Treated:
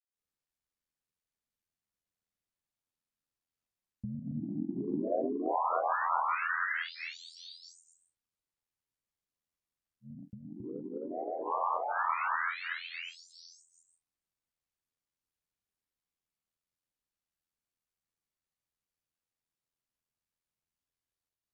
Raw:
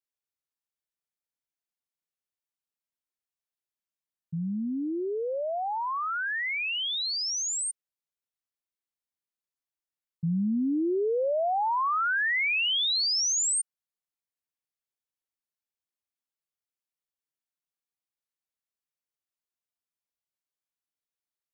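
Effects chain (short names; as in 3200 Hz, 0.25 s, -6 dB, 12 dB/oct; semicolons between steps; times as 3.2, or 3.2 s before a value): treble ducked by the level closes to 1100 Hz, closed at -27 dBFS; low shelf 180 Hz +11.5 dB; plate-style reverb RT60 0.79 s, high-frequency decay 0.65×, pre-delay 0.11 s, DRR 1.5 dB; negative-ratio compressor -27 dBFS, ratio -0.5; ring modulator 42 Hz; grains 0.247 s, grains 15/s, spray 0.396 s; dynamic EQ 110 Hz, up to -4 dB, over -57 dBFS, Q 2.1; gain +1 dB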